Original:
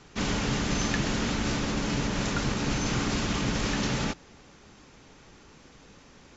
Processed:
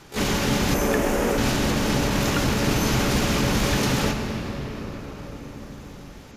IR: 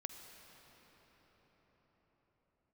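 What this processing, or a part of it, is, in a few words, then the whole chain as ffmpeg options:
shimmer-style reverb: -filter_complex "[0:a]asplit=2[a][b];[b]asetrate=88200,aresample=44100,atempo=0.5,volume=-5dB[c];[a][c]amix=inputs=2:normalize=0[d];[1:a]atrim=start_sample=2205[e];[d][e]afir=irnorm=-1:irlink=0,asettb=1/sr,asplit=3[f][g][h];[f]atrim=end=0.744[i];[g]atrim=start=0.74:end=1.38,asetpts=PTS-STARTPTS,afade=t=in:d=0.004:c=qsin,afade=t=out:st=0.636:d=0.004:c=qsin,equalizer=f=125:t=o:w=1:g=-10,equalizer=f=500:t=o:w=1:g=6,equalizer=f=4k:t=o:w=1:g=-11[j];[h]atrim=start=1.376[k];[i][j]acrossfade=d=0.004:c1=hsin:c2=qsin[l];[l][k]acrossfade=d=0.004:c1=qsin:c2=hsin,volume=8dB"

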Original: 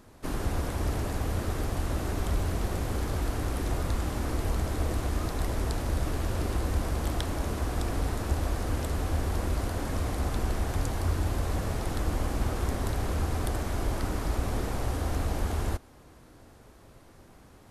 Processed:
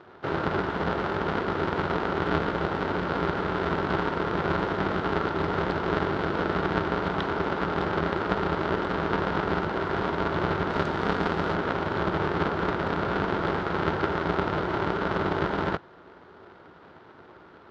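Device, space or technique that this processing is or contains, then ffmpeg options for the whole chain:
ring modulator pedal into a guitar cabinet: -filter_complex "[0:a]aeval=exprs='val(0)*sgn(sin(2*PI*120*n/s))':c=same,highpass=110,equalizer=f=130:t=q:w=4:g=-8,equalizer=f=210:t=q:w=4:g=-7,equalizer=f=370:t=q:w=4:g=6,equalizer=f=940:t=q:w=4:g=4,equalizer=f=1.4k:t=q:w=4:g=9,equalizer=f=2.5k:t=q:w=4:g=-4,lowpass=f=3.7k:w=0.5412,lowpass=f=3.7k:w=1.3066,asettb=1/sr,asplit=3[a][b][c];[a]atrim=end=10.704[d];[b]atrim=start=10.7:end=11.54,asetpts=PTS-STARTPTS,afade=t=in:d=0.004:c=qsin,afade=t=out:st=0.836:d=0.004:c=qsin,highshelf=f=6.8k:g=8[e];[c]atrim=start=11.536[f];[d][e]acrossfade=d=0.004:c1=hsin:c2=qsin[g];[g][f]acrossfade=d=0.004:c1=qsin:c2=hsin,volume=3dB"

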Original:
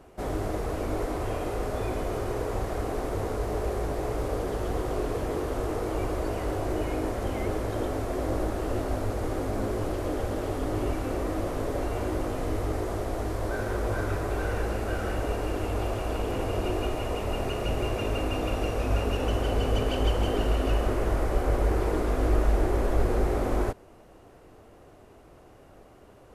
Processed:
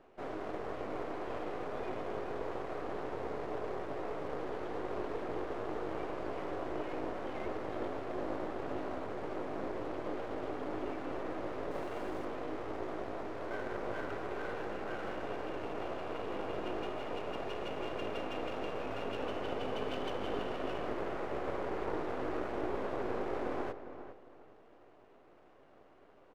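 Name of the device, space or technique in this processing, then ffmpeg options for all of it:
crystal radio: -filter_complex "[0:a]highpass=260,lowpass=3k,aeval=exprs='if(lt(val(0),0),0.251*val(0),val(0))':c=same,asettb=1/sr,asplit=3[a][b][c];[a]atrim=end=11.714[d];[b]atrim=start=11.71:end=12.25,asetpts=PTS-STARTPTS,afade=t=in:d=0.004:c=qsin,afade=t=out:st=0.536:d=0.004:c=qsin,highshelf=f=7.5k:g=11[e];[c]atrim=start=12.246[f];[d][e]acrossfade=d=0.004:c1=hsin:c2=qsin[g];[g][f]acrossfade=d=0.004:c1=qsin:c2=hsin,asplit=2[h][i];[i]adelay=405,lowpass=f=2.1k:p=1,volume=-10.5dB,asplit=2[j][k];[k]adelay=405,lowpass=f=2.1k:p=1,volume=0.27,asplit=2[l][m];[m]adelay=405,lowpass=f=2.1k:p=1,volume=0.27[n];[h][j][l][n]amix=inputs=4:normalize=0,volume=-4dB"

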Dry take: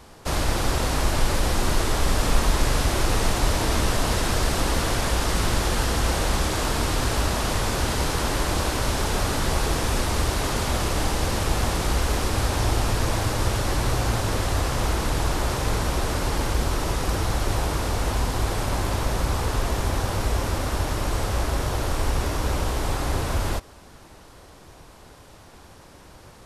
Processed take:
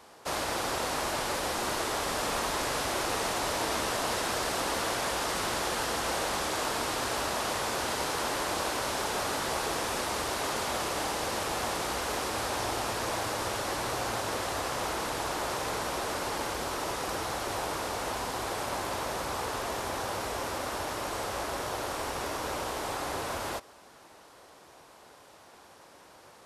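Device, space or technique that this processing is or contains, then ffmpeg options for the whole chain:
filter by subtraction: -filter_complex "[0:a]asplit=2[a][b];[b]lowpass=670,volume=-1[c];[a][c]amix=inputs=2:normalize=0,volume=-5dB"

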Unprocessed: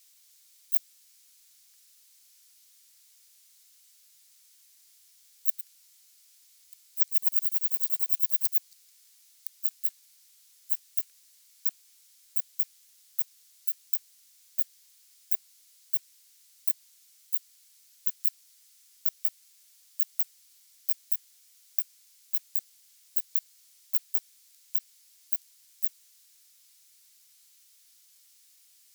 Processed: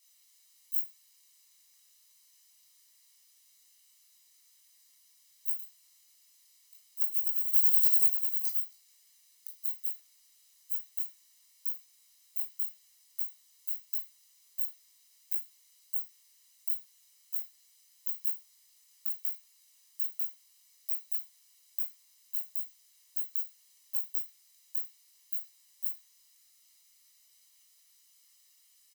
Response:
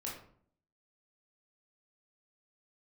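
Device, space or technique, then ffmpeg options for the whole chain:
microphone above a desk: -filter_complex "[0:a]aecho=1:1:1:0.6[a];[1:a]atrim=start_sample=2205[b];[a][b]afir=irnorm=-1:irlink=0,asettb=1/sr,asplit=3[c][d][e];[c]atrim=end=7.534[f];[d]atrim=start=7.53:end=8.1,asetpts=PTS-STARTPTS,afade=t=in:d=0.004:c=qsin,afade=t=out:st=0.566:d=0.004:c=qsin,tiltshelf=f=1.4k:g=-9[g];[e]atrim=start=8.096[h];[f][g]acrossfade=d=0.004:c1=hsin:c2=qsin[i];[i][h]acrossfade=d=0.004:c1=qsin:c2=hsin,volume=-3.5dB"

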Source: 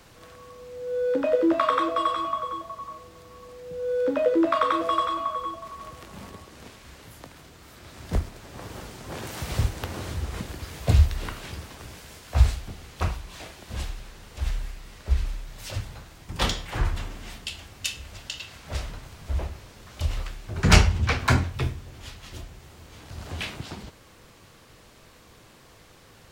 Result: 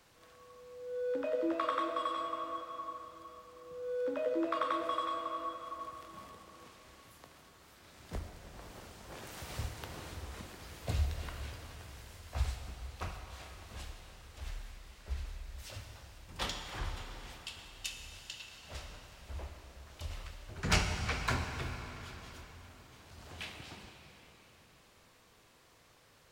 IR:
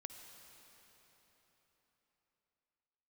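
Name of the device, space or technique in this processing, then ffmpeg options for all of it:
cathedral: -filter_complex "[0:a]lowshelf=f=340:g=-6[a];[1:a]atrim=start_sample=2205[b];[a][b]afir=irnorm=-1:irlink=0,volume=-5dB"

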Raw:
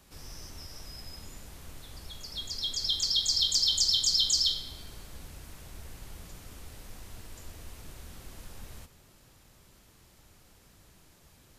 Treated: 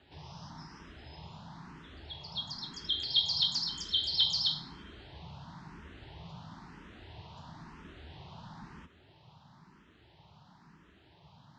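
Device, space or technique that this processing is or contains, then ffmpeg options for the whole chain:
barber-pole phaser into a guitar amplifier: -filter_complex "[0:a]asplit=2[a][b];[b]afreqshift=1[c];[a][c]amix=inputs=2:normalize=1,asoftclip=type=tanh:threshold=-18dB,highpass=95,equalizer=f=160:t=q:w=4:g=8,equalizer=f=510:t=q:w=4:g=-9,equalizer=f=920:t=q:w=4:g=8,equalizer=f=2.3k:t=q:w=4:g=-6,lowpass=f=3.9k:w=0.5412,lowpass=f=3.9k:w=1.3066,volume=4.5dB"

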